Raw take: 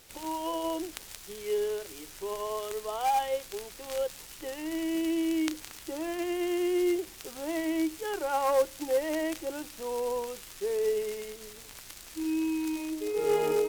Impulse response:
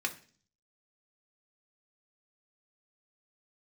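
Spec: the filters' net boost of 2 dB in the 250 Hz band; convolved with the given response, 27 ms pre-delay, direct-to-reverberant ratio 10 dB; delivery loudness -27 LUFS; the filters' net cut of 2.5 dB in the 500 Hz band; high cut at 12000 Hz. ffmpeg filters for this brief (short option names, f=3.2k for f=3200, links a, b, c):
-filter_complex "[0:a]lowpass=12k,equalizer=f=250:t=o:g=7,equalizer=f=500:t=o:g=-6,asplit=2[a][b];[1:a]atrim=start_sample=2205,adelay=27[c];[b][c]afir=irnorm=-1:irlink=0,volume=-15dB[d];[a][d]amix=inputs=2:normalize=0,volume=5dB"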